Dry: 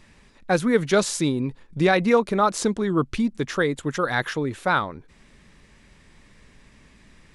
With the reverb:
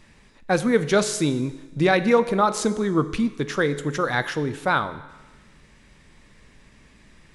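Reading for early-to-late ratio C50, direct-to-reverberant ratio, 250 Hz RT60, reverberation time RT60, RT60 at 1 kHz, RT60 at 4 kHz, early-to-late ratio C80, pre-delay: 14.0 dB, 11.0 dB, 1.2 s, 1.2 s, 1.2 s, 1.2 s, 15.5 dB, 6 ms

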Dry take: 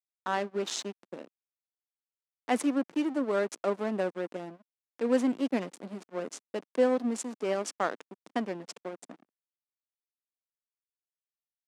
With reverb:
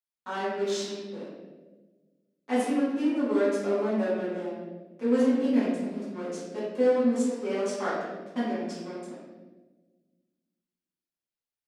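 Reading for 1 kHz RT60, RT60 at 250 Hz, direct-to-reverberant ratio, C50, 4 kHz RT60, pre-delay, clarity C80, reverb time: 1.0 s, 1.9 s, -12.5 dB, -0.5 dB, 0.95 s, 4 ms, 2.0 dB, 1.3 s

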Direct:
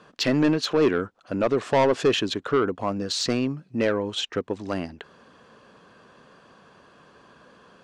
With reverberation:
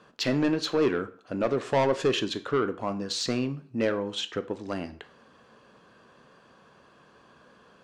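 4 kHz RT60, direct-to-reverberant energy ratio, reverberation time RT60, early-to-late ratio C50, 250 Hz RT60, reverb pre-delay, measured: 0.40 s, 10.0 dB, 0.45 s, 15.5 dB, 0.45 s, 9 ms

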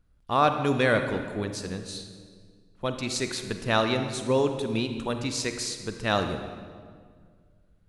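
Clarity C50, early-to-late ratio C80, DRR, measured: 7.5 dB, 9.0 dB, 7.0 dB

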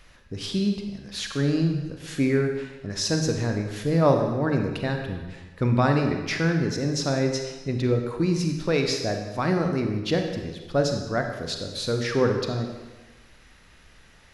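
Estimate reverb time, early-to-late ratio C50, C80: 1.2 s, 5.0 dB, 7.0 dB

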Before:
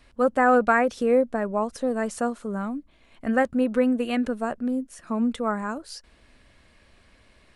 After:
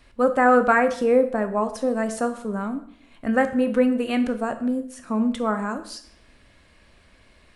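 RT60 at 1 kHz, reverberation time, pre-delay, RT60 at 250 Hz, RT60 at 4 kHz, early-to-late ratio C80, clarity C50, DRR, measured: 0.60 s, 0.60 s, 16 ms, 0.70 s, 0.55 s, 15.0 dB, 12.5 dB, 8.5 dB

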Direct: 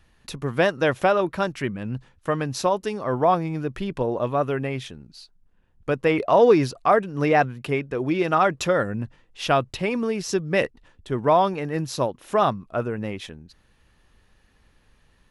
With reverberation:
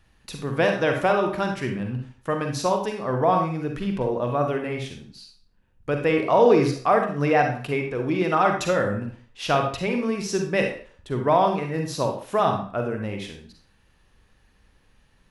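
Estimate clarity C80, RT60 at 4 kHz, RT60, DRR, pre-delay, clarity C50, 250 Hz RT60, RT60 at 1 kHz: 10.0 dB, 0.40 s, 0.45 s, 3.0 dB, 39 ms, 5.0 dB, 0.35 s, 0.45 s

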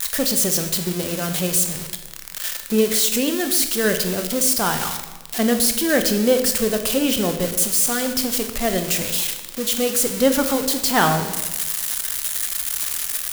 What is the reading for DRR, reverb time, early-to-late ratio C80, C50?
6.0 dB, 1.2 s, 10.5 dB, 8.5 dB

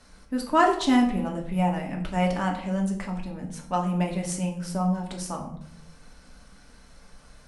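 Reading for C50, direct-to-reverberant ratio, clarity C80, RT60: 8.0 dB, 0.0 dB, 11.5 dB, 0.70 s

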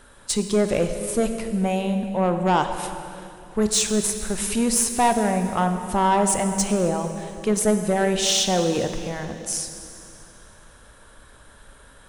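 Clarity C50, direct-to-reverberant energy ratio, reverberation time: 7.5 dB, 6.5 dB, 2.8 s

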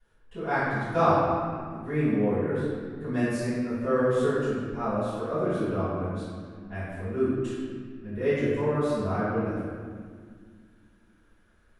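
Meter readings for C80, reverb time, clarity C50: -1.0 dB, 1.9 s, -3.5 dB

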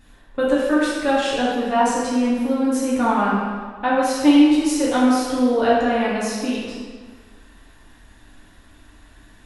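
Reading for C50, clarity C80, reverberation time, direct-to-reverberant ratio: -1.0 dB, 1.0 dB, 1.6 s, -7.5 dB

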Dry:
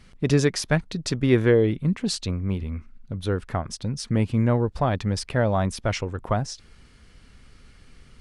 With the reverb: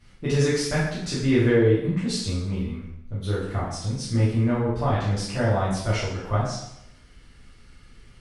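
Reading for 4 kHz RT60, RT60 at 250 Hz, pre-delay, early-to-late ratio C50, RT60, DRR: 0.75 s, 0.75 s, 4 ms, 1.5 dB, 0.80 s, -9.5 dB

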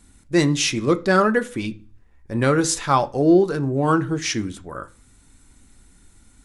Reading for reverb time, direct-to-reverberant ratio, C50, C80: 0.40 s, 8.5 dB, 20.0 dB, 25.0 dB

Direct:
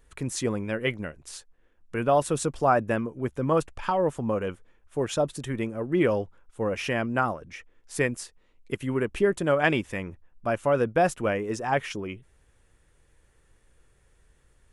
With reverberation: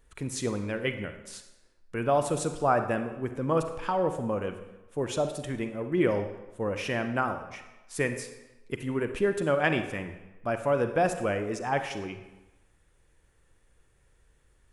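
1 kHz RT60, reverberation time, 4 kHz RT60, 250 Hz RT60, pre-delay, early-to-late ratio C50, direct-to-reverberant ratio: 1.1 s, 1.1 s, 0.80 s, 0.95 s, 36 ms, 8.5 dB, 7.5 dB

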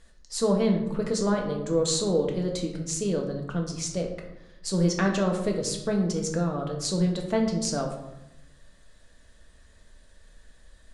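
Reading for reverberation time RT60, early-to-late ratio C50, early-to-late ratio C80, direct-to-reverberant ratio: 0.90 s, 6.5 dB, 9.0 dB, 1.0 dB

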